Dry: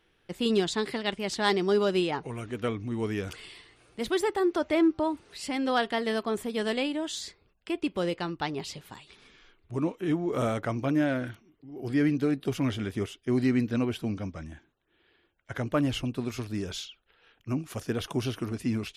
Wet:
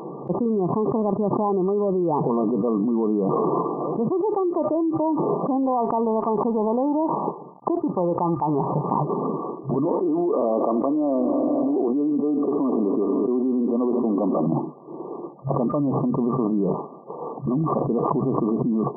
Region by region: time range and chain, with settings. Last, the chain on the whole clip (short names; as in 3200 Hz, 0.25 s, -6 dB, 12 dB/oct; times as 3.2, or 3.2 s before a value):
5.63–8.84 G.711 law mismatch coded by A + bell 880 Hz +9.5 dB 0.38 oct
9.85–14.47 HPF 250 Hz 24 dB/oct + multi-head echo 75 ms, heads first and third, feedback 63%, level -22 dB
whole clip: FFT band-pass 130–1200 Hz; fast leveller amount 100%; gain -2 dB